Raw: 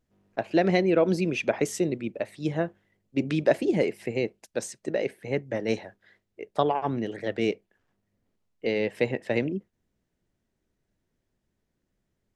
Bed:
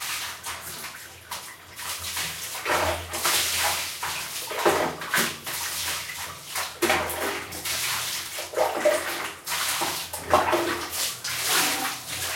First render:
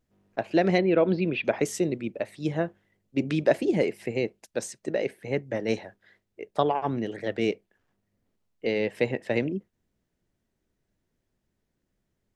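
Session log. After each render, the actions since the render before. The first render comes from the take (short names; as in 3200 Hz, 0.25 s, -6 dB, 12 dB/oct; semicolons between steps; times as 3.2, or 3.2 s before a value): 0.78–1.45 steep low-pass 4200 Hz 48 dB/oct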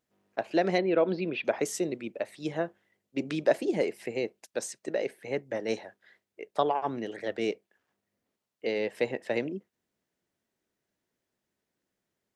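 HPF 440 Hz 6 dB/oct; dynamic EQ 2400 Hz, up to -4 dB, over -44 dBFS, Q 1.2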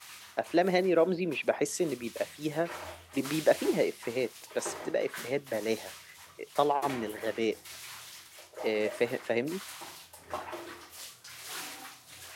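add bed -18 dB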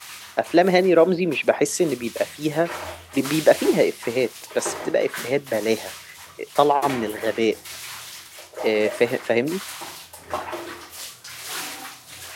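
gain +9.5 dB; limiter -2 dBFS, peak gain reduction 1 dB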